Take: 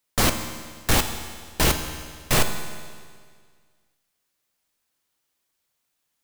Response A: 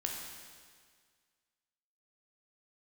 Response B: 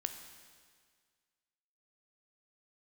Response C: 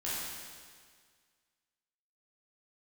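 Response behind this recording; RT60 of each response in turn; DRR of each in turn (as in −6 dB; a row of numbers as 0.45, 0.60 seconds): B; 1.8, 1.8, 1.8 seconds; −0.5, 6.5, −9.5 decibels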